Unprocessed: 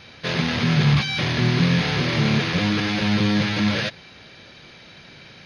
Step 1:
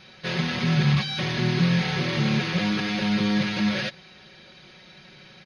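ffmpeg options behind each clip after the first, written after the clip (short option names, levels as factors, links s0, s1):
-af "aecho=1:1:5.4:0.65,volume=0.531"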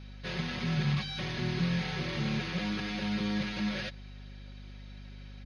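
-af "aeval=exprs='val(0)+0.0158*(sin(2*PI*50*n/s)+sin(2*PI*2*50*n/s)/2+sin(2*PI*3*50*n/s)/3+sin(2*PI*4*50*n/s)/4+sin(2*PI*5*50*n/s)/5)':c=same,volume=0.355"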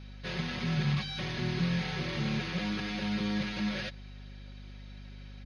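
-af anull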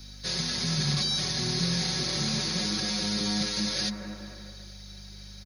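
-filter_complex "[0:a]acrossover=split=180|1800[s0][s1][s2];[s1]aecho=1:1:250|450|610|738|840.4:0.631|0.398|0.251|0.158|0.1[s3];[s2]aexciter=amount=12.3:drive=3.8:freq=4200[s4];[s0][s3][s4]amix=inputs=3:normalize=0"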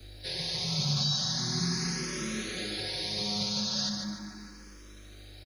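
-filter_complex "[0:a]acrossover=split=110|850[s0][s1][s2];[s0]acrusher=bits=7:mix=0:aa=0.000001[s3];[s3][s1][s2]amix=inputs=3:normalize=0,aecho=1:1:147|294|441|588|735:0.531|0.202|0.0767|0.0291|0.0111,asplit=2[s4][s5];[s5]afreqshift=0.38[s6];[s4][s6]amix=inputs=2:normalize=1,volume=0.841"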